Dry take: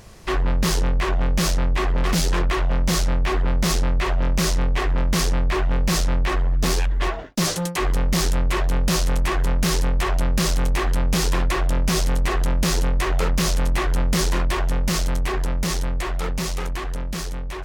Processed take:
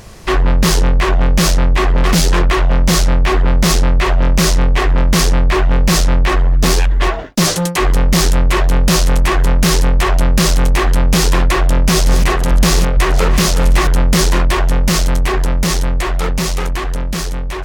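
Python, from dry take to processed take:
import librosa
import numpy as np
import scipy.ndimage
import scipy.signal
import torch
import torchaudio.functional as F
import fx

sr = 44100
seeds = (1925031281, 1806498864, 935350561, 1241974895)

y = fx.reverse_delay(x, sr, ms=227, wet_db=-10.0, at=(11.83, 13.89))
y = y * 10.0 ** (8.5 / 20.0)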